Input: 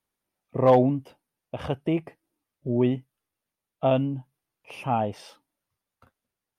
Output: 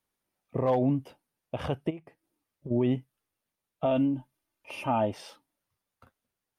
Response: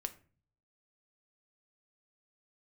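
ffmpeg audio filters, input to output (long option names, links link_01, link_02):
-filter_complex "[0:a]asplit=3[link_01][link_02][link_03];[link_01]afade=type=out:start_time=1.89:duration=0.02[link_04];[link_02]acompressor=threshold=-37dB:ratio=20,afade=type=in:start_time=1.89:duration=0.02,afade=type=out:start_time=2.7:duration=0.02[link_05];[link_03]afade=type=in:start_time=2.7:duration=0.02[link_06];[link_04][link_05][link_06]amix=inputs=3:normalize=0,asettb=1/sr,asplit=3[link_07][link_08][link_09];[link_07]atrim=end=3.854[link_10];[link_08]atrim=start=3.85:end=5.13,asetpts=PTS-STARTPTS,afade=type=in:duration=0.004:curve=qsin,afade=type=out:start_time=1.276:duration=0.004:curve=qsin,aecho=1:1:3.3:0.55,atrim=end_sample=56448[link_11];[link_09]atrim=start=5.126[link_12];[link_10][link_11]acrossfade=duration=0.004:curve1=hsin:curve2=qsin[link_13];[link_13][link_12]acrossfade=duration=0.004:curve1=qsin:curve2=hsin,alimiter=limit=-17dB:level=0:latency=1:release=53"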